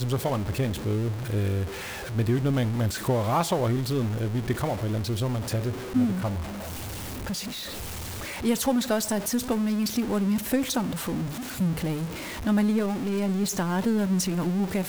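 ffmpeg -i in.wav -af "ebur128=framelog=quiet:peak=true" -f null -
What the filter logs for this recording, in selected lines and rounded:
Integrated loudness:
  I:         -27.1 LUFS
  Threshold: -37.1 LUFS
Loudness range:
  LRA:         3.0 LU
  Threshold: -47.3 LUFS
  LRA low:   -29.2 LUFS
  LRA high:  -26.2 LUFS
True peak:
  Peak:      -11.3 dBFS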